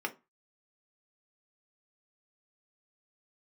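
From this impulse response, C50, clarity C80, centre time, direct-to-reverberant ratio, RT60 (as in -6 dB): 18.0 dB, 26.0 dB, 6 ms, 3.5 dB, 0.25 s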